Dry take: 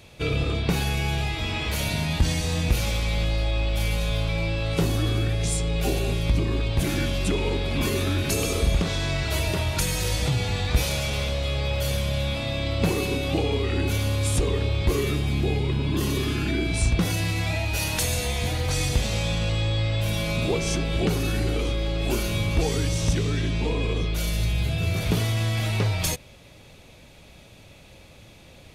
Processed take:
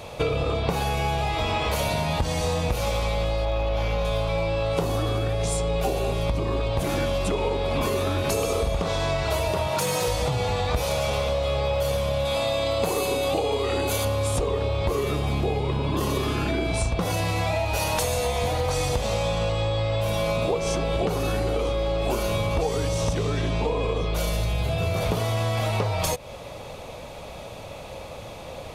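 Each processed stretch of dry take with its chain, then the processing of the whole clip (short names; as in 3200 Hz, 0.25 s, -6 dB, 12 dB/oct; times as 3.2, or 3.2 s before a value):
3.45–4.05 CVSD 64 kbps + running mean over 5 samples + hard clip -19 dBFS
9.67–10.08 HPF 120 Hz 24 dB/oct + hard clip -21 dBFS
12.25–14.05 tone controls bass -5 dB, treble +9 dB + notch 5500 Hz, Q 8.2
whole clip: band shelf 750 Hz +10 dB; compressor, threshold -29 dBFS; gain +7 dB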